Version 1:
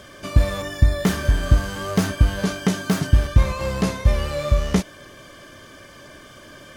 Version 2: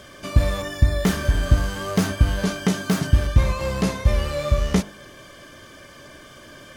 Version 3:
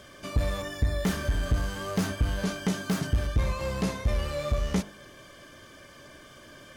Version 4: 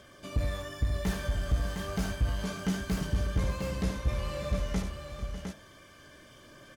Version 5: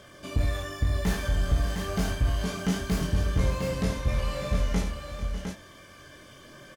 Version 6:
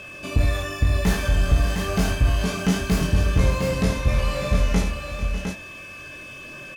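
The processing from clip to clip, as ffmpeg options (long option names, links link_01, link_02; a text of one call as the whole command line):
ffmpeg -i in.wav -af "bandreject=frequency=50.68:width_type=h:width=4,bandreject=frequency=101.36:width_type=h:width=4,bandreject=frequency=152.04:width_type=h:width=4,bandreject=frequency=202.72:width_type=h:width=4,bandreject=frequency=253.4:width_type=h:width=4,bandreject=frequency=304.08:width_type=h:width=4,bandreject=frequency=354.76:width_type=h:width=4,bandreject=frequency=405.44:width_type=h:width=4,bandreject=frequency=456.12:width_type=h:width=4,bandreject=frequency=506.8:width_type=h:width=4,bandreject=frequency=557.48:width_type=h:width=4,bandreject=frequency=608.16:width_type=h:width=4,bandreject=frequency=658.84:width_type=h:width=4,bandreject=frequency=709.52:width_type=h:width=4,bandreject=frequency=760.2:width_type=h:width=4,bandreject=frequency=810.88:width_type=h:width=4,bandreject=frequency=861.56:width_type=h:width=4,bandreject=frequency=912.24:width_type=h:width=4,bandreject=frequency=962.92:width_type=h:width=4,bandreject=frequency=1013.6:width_type=h:width=4,bandreject=frequency=1064.28:width_type=h:width=4,bandreject=frequency=1114.96:width_type=h:width=4,bandreject=frequency=1165.64:width_type=h:width=4,bandreject=frequency=1216.32:width_type=h:width=4,bandreject=frequency=1267:width_type=h:width=4,bandreject=frequency=1317.68:width_type=h:width=4,bandreject=frequency=1368.36:width_type=h:width=4,bandreject=frequency=1419.04:width_type=h:width=4,bandreject=frequency=1469.72:width_type=h:width=4,bandreject=frequency=1520.4:width_type=h:width=4,bandreject=frequency=1571.08:width_type=h:width=4,bandreject=frequency=1621.76:width_type=h:width=4,bandreject=frequency=1672.44:width_type=h:width=4,bandreject=frequency=1723.12:width_type=h:width=4,bandreject=frequency=1773.8:width_type=h:width=4,bandreject=frequency=1824.48:width_type=h:width=4" out.wav
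ffmpeg -i in.wav -af "asoftclip=type=tanh:threshold=-11.5dB,volume=-5.5dB" out.wav
ffmpeg -i in.wav -filter_complex "[0:a]aphaser=in_gain=1:out_gain=1:delay=1.7:decay=0.21:speed=0.3:type=triangular,asplit=2[link_01][link_02];[link_02]aecho=0:1:74|446|599|708:0.398|0.126|0.211|0.501[link_03];[link_01][link_03]amix=inputs=2:normalize=0,volume=-6dB" out.wav
ffmpeg -i in.wav -filter_complex "[0:a]asplit=2[link_01][link_02];[link_02]adelay=23,volume=-4dB[link_03];[link_01][link_03]amix=inputs=2:normalize=0,volume=3dB" out.wav
ffmpeg -i in.wav -af "aeval=exprs='val(0)+0.00631*sin(2*PI*2600*n/s)':channel_layout=same,volume=6dB" out.wav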